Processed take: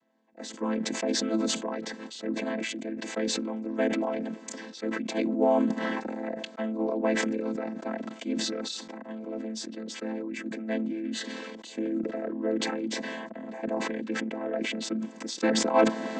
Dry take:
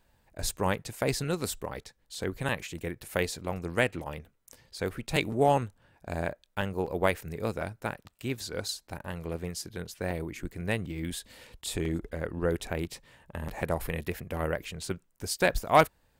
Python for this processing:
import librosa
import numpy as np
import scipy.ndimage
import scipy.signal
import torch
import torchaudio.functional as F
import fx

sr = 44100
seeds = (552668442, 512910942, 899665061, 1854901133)

y = fx.chord_vocoder(x, sr, chord='minor triad', root=57)
y = fx.sustainer(y, sr, db_per_s=22.0)